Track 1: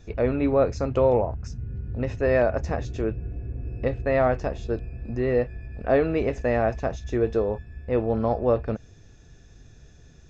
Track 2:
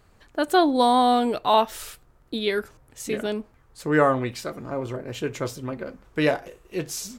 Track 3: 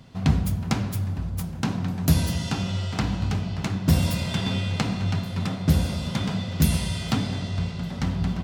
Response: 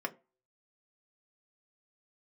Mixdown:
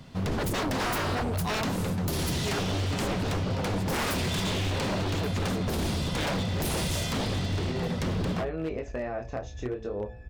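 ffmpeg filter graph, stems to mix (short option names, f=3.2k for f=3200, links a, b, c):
-filter_complex "[0:a]acompressor=threshold=-26dB:ratio=8,flanger=delay=18.5:depth=7.2:speed=0.65,adelay=2500,volume=0.5dB[a];[1:a]volume=-6dB,asplit=2[b][c];[2:a]alimiter=limit=-17.5dB:level=0:latency=1:release=22,volume=2dB[d];[c]apad=whole_len=564368[e];[a][e]sidechaincompress=threshold=-30dB:ratio=8:attack=16:release=773[f];[f][b][d]amix=inputs=3:normalize=0,bandreject=f=56.61:t=h:w=4,bandreject=f=113.22:t=h:w=4,bandreject=f=169.83:t=h:w=4,bandreject=f=226.44:t=h:w=4,bandreject=f=283.05:t=h:w=4,bandreject=f=339.66:t=h:w=4,bandreject=f=396.27:t=h:w=4,bandreject=f=452.88:t=h:w=4,bandreject=f=509.49:t=h:w=4,bandreject=f=566.1:t=h:w=4,bandreject=f=622.71:t=h:w=4,bandreject=f=679.32:t=h:w=4,bandreject=f=735.93:t=h:w=4,bandreject=f=792.54:t=h:w=4,bandreject=f=849.15:t=h:w=4,bandreject=f=905.76:t=h:w=4,aeval=exprs='0.0668*(abs(mod(val(0)/0.0668+3,4)-2)-1)':c=same"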